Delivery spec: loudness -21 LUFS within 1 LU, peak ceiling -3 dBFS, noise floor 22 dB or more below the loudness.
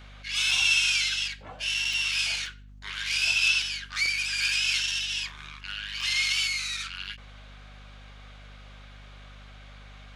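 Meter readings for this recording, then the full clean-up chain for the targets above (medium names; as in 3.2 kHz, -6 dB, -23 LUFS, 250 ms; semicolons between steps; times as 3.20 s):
dropouts 6; longest dropout 2.2 ms; hum 50 Hz; highest harmonic 250 Hz; hum level -45 dBFS; loudness -25.0 LUFS; peak level -10.5 dBFS; loudness target -21.0 LUFS
-> interpolate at 0.51/1.93/2.46/3.62/4.90/6.01 s, 2.2 ms; de-hum 50 Hz, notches 5; trim +4 dB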